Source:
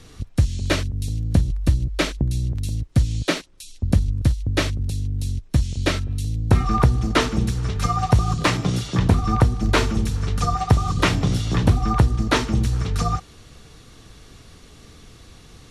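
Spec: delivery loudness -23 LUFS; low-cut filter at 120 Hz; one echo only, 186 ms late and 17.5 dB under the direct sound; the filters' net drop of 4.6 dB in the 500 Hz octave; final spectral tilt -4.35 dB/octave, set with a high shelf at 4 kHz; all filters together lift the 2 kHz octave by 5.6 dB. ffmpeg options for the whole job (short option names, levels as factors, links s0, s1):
-af "highpass=120,equalizer=f=500:t=o:g=-6.5,equalizer=f=2000:t=o:g=6.5,highshelf=f=4000:g=3,aecho=1:1:186:0.133,volume=1.06"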